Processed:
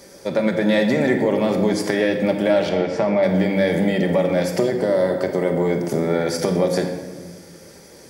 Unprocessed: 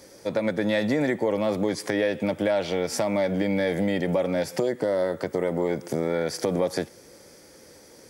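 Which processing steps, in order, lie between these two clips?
0:02.69–0:03.23: low-pass filter 2,500 Hz 12 dB per octave
rectangular room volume 1,300 cubic metres, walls mixed, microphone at 1.2 metres
level +4 dB

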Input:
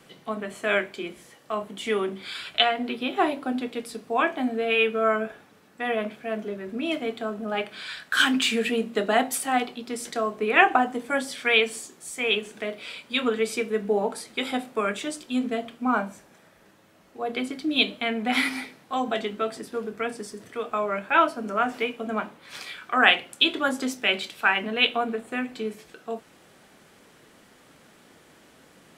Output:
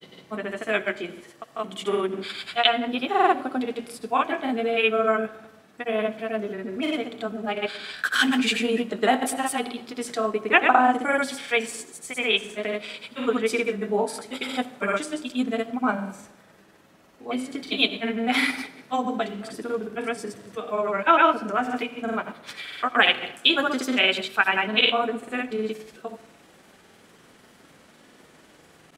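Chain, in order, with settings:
granular cloud, pitch spread up and down by 0 semitones
on a send: convolution reverb RT60 1.0 s, pre-delay 52 ms, DRR 17 dB
on the sum: level +2.5 dB

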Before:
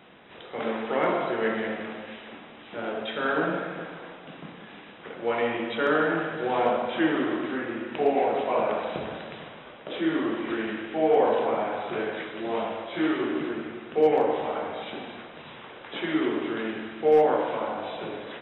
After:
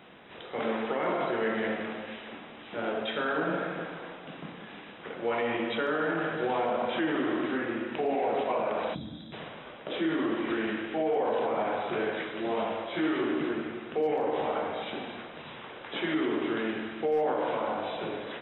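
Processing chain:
gain on a spectral selection 0:08.95–0:09.33, 340–3,200 Hz −18 dB
brickwall limiter −20.5 dBFS, peak gain reduction 9 dB

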